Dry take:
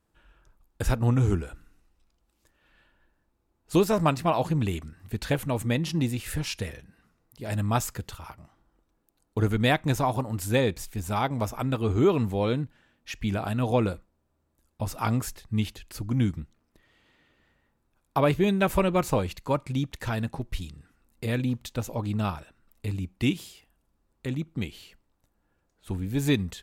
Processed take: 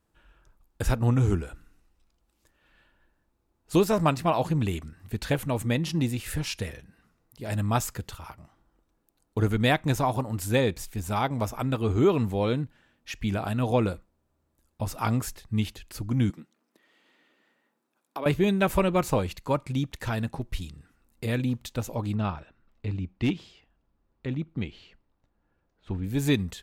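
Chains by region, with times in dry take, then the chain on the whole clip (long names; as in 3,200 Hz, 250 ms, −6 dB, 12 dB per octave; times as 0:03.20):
0:16.30–0:18.26: high-pass filter 210 Hz 24 dB per octave + downward compressor 2 to 1, threshold −37 dBFS
0:22.15–0:26.04: high-frequency loss of the air 170 metres + hard clipping −19 dBFS
whole clip: no processing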